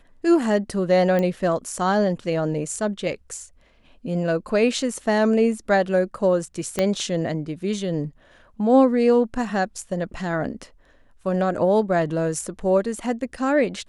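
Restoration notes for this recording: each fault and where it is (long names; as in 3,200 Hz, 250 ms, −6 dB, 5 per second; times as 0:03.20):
0:01.19: click −13 dBFS
0:06.79: click −8 dBFS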